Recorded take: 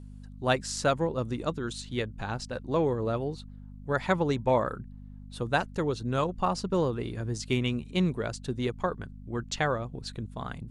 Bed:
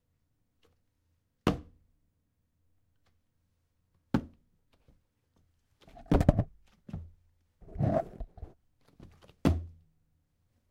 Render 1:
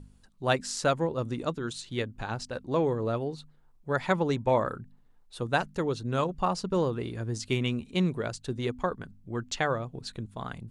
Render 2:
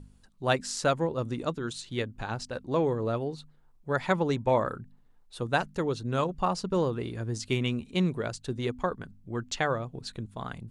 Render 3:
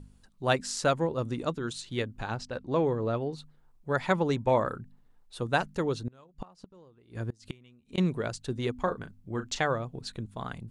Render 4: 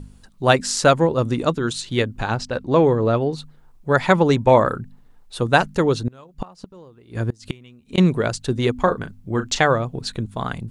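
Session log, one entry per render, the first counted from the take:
de-hum 50 Hz, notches 5
no audible change
2.35–3.33 s: distance through air 59 m; 6.03–7.98 s: inverted gate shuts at -23 dBFS, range -28 dB; 8.74–9.64 s: doubling 37 ms -9.5 dB
trim +11 dB; peak limiter -2 dBFS, peak gain reduction 2 dB

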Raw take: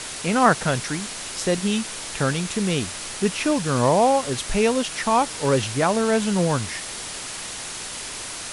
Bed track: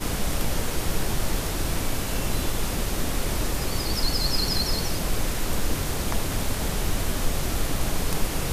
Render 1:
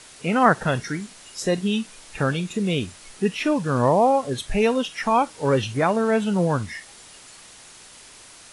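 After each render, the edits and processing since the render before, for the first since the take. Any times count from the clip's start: noise print and reduce 13 dB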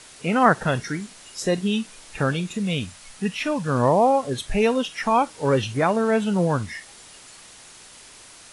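2.54–3.68 s: peaking EQ 370 Hz -11.5 dB 0.53 oct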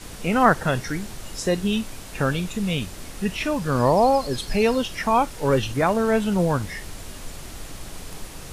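add bed track -12 dB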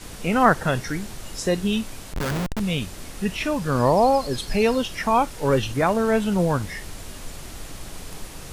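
2.13–2.60 s: Schmitt trigger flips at -27.5 dBFS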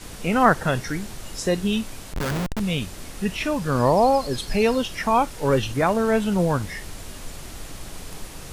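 no audible change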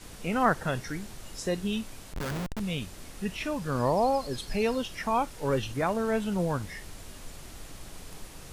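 trim -7.5 dB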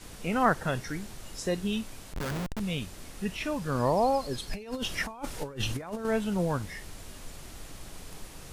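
4.53–6.05 s: compressor with a negative ratio -33 dBFS, ratio -0.5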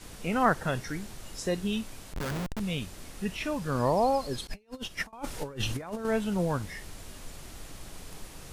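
4.47–5.13 s: upward expansion 2.5:1, over -43 dBFS

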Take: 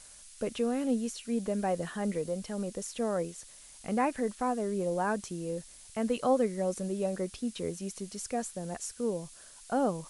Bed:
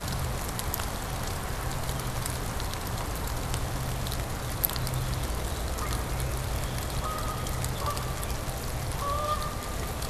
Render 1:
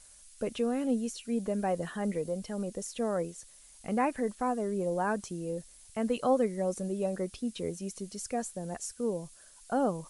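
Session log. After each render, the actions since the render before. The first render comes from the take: noise reduction 6 dB, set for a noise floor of -53 dBFS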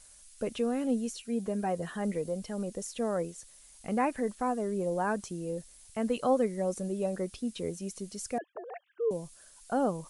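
1.22–1.89 s: comb of notches 290 Hz; 8.38–9.11 s: formants replaced by sine waves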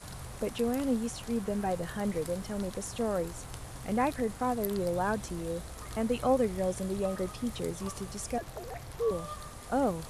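add bed -12.5 dB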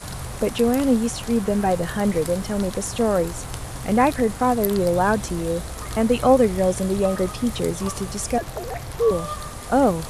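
trim +11 dB

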